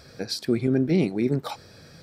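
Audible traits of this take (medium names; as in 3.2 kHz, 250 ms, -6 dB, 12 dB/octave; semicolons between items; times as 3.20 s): noise floor -50 dBFS; spectral tilt -6.5 dB/octave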